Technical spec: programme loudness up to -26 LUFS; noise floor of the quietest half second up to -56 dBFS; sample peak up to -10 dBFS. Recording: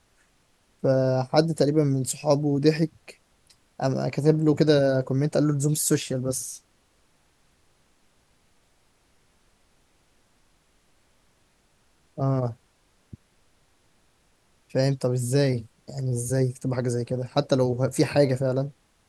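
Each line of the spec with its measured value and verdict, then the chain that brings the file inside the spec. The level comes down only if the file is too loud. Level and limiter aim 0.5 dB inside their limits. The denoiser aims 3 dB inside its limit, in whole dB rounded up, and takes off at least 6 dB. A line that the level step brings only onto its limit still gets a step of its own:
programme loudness -24.5 LUFS: fail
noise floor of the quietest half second -64 dBFS: pass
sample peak -4.5 dBFS: fail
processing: trim -2 dB; peak limiter -10.5 dBFS

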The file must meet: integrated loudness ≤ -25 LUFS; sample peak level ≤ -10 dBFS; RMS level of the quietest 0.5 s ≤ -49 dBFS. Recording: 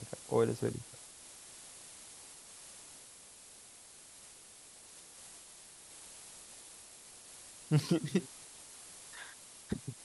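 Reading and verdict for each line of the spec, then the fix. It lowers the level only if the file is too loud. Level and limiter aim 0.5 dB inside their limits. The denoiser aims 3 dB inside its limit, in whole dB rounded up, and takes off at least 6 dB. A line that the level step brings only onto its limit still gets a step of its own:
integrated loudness -40.0 LUFS: pass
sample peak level -16.5 dBFS: pass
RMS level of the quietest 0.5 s -56 dBFS: pass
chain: none needed

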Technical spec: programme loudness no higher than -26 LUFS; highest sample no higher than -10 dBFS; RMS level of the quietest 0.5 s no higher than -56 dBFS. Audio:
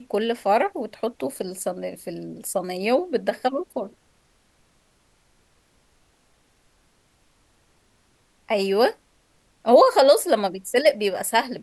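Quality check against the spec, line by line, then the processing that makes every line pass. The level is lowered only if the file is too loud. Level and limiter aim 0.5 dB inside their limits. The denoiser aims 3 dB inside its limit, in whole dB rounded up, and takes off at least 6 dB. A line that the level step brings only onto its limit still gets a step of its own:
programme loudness -22.0 LUFS: fail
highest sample -4.5 dBFS: fail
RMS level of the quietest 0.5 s -63 dBFS: pass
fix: trim -4.5 dB; peak limiter -10.5 dBFS

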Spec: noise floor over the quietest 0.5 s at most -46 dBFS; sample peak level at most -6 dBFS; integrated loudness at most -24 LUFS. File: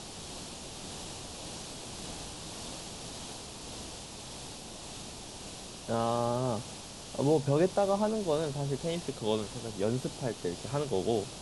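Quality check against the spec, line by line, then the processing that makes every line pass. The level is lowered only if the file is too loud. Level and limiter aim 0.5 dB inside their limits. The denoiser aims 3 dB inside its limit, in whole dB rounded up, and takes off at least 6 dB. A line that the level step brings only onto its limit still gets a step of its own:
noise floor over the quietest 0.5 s -45 dBFS: fail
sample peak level -15.0 dBFS: pass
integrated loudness -34.5 LUFS: pass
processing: noise reduction 6 dB, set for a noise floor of -45 dBFS

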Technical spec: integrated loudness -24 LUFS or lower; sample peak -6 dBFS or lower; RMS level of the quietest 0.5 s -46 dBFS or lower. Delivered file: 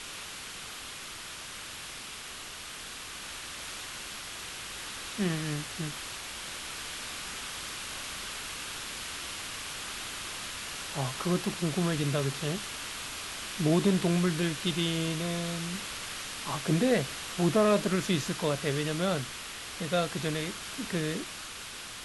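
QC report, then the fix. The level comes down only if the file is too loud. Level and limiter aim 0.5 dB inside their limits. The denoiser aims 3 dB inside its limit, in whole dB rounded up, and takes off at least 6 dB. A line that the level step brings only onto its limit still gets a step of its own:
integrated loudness -32.5 LUFS: pass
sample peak -13.5 dBFS: pass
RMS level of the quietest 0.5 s -43 dBFS: fail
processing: noise reduction 6 dB, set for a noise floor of -43 dBFS

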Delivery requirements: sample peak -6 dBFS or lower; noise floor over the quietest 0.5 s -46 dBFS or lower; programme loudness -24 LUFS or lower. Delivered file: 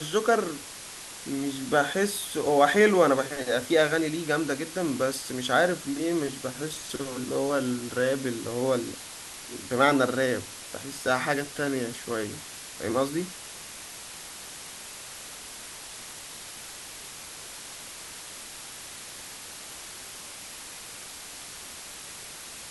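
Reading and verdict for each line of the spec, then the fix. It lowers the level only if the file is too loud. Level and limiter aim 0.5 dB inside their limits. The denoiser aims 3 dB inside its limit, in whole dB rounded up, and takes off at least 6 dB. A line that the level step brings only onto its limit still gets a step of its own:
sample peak -7.5 dBFS: pass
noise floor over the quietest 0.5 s -42 dBFS: fail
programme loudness -28.5 LUFS: pass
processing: noise reduction 7 dB, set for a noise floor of -42 dBFS

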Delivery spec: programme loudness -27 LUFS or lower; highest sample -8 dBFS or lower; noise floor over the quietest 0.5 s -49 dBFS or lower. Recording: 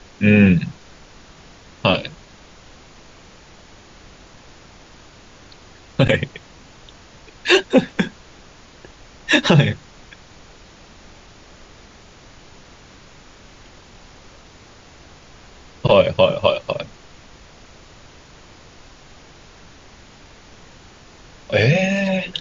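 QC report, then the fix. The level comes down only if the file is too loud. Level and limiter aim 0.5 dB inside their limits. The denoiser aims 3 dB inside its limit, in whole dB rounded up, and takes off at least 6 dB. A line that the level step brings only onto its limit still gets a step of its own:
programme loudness -17.5 LUFS: fail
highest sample -2.0 dBFS: fail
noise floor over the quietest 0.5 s -45 dBFS: fail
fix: trim -10 dB

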